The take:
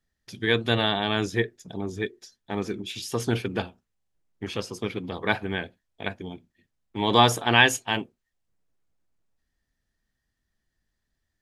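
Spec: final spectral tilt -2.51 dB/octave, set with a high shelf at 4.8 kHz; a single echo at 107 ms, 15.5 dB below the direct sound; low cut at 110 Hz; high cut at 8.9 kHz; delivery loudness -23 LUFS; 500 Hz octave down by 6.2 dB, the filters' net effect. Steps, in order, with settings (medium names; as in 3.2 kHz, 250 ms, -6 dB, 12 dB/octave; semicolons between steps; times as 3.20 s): high-pass 110 Hz; low-pass 8.9 kHz; peaking EQ 500 Hz -8 dB; treble shelf 4.8 kHz -8.5 dB; delay 107 ms -15.5 dB; trim +5.5 dB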